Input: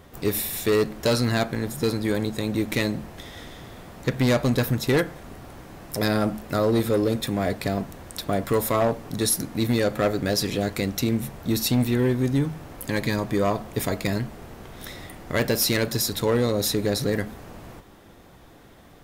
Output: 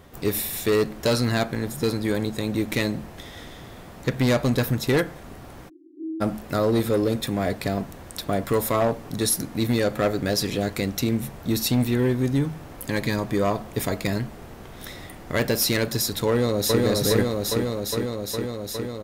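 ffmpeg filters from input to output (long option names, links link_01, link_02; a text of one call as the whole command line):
ffmpeg -i in.wav -filter_complex "[0:a]asplit=3[link_01][link_02][link_03];[link_01]afade=type=out:start_time=5.68:duration=0.02[link_04];[link_02]asuperpass=centerf=320:order=12:qfactor=3.3,afade=type=in:start_time=5.68:duration=0.02,afade=type=out:start_time=6.2:duration=0.02[link_05];[link_03]afade=type=in:start_time=6.2:duration=0.02[link_06];[link_04][link_05][link_06]amix=inputs=3:normalize=0,asplit=2[link_07][link_08];[link_08]afade=type=in:start_time=16.28:duration=0.01,afade=type=out:start_time=16.82:duration=0.01,aecho=0:1:410|820|1230|1640|2050|2460|2870|3280|3690|4100|4510|4920:0.891251|0.713001|0.570401|0.45632|0.365056|0.292045|0.233636|0.186909|0.149527|0.119622|0.0956973|0.0765579[link_09];[link_07][link_09]amix=inputs=2:normalize=0" out.wav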